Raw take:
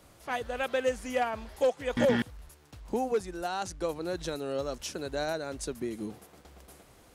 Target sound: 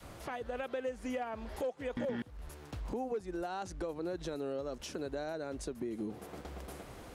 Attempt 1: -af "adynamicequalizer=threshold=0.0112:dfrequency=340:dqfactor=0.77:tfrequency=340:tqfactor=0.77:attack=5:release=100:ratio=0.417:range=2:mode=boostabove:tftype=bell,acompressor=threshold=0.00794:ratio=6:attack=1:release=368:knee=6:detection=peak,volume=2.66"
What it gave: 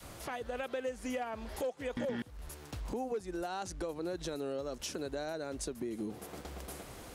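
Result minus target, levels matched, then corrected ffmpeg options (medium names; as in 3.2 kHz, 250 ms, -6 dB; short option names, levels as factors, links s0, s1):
8 kHz band +6.0 dB
-af "adynamicequalizer=threshold=0.0112:dfrequency=340:dqfactor=0.77:tfrequency=340:tqfactor=0.77:attack=5:release=100:ratio=0.417:range=2:mode=boostabove:tftype=bell,acompressor=threshold=0.00794:ratio=6:attack=1:release=368:knee=6:detection=peak,highshelf=f=3800:g=-8,volume=2.66"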